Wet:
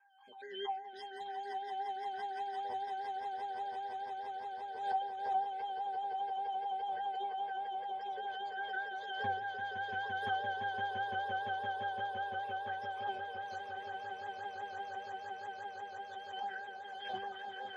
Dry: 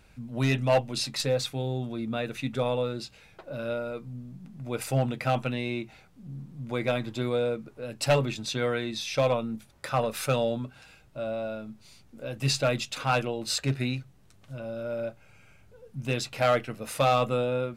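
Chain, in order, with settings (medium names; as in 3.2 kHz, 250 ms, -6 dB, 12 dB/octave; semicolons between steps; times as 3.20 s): random holes in the spectrogram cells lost 78%; high-pass 670 Hz 24 dB/octave; sine folder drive 9 dB, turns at -17.5 dBFS; flange 1.5 Hz, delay 3.9 ms, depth 2.6 ms, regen -63%; pitch-class resonator G, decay 0.46 s; echo with a slow build-up 171 ms, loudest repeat 8, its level -6 dB; vibrato 5 Hz 45 cents; on a send at -20 dB: reverberation RT60 0.40 s, pre-delay 4 ms; on the sum: swell ahead of each attack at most 69 dB/s; trim +8.5 dB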